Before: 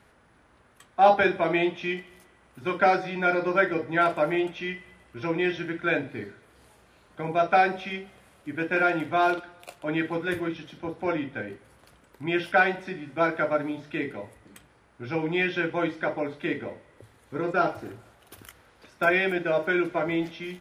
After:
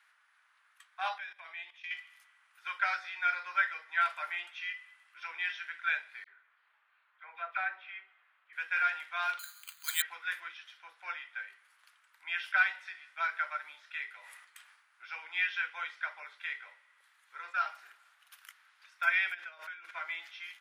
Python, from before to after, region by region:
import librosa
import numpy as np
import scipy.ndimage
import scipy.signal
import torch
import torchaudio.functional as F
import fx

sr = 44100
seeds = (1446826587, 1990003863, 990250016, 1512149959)

y = fx.chain(x, sr, fx.notch(hz=1400.0, q=7.3),
    fx.level_steps(step_db=17), at=(1.18, 1.91))
y = fx.chain(y, sr, fx.block_float(bits=7),
    fx.air_absorb(metres=490.0),
    fx.dispersion(late='lows', ms=45.0, hz=2200.0), at=(6.24, 8.53))
y = fx.chain(y, sr, fx.highpass(hz=1000.0, slope=24),
    fx.resample_bad(factor=8, down='filtered', up='zero_stuff'), at=(9.39, 10.02))
y = fx.chain(y, sr, fx.high_shelf(hz=5400.0, db=4.0),
    fx.sustainer(db_per_s=54.0), at=(14.12, 15.03))
y = fx.chain(y, sr, fx.low_shelf(hz=270.0, db=10.5),
    fx.over_compress(threshold_db=-32.0, ratio=-1.0), at=(19.34, 19.91))
y = scipy.signal.sosfilt(scipy.signal.butter(4, 1300.0, 'highpass', fs=sr, output='sos'), y)
y = fx.high_shelf(y, sr, hz=4100.0, db=-7.5)
y = y * 10.0 ** (-1.5 / 20.0)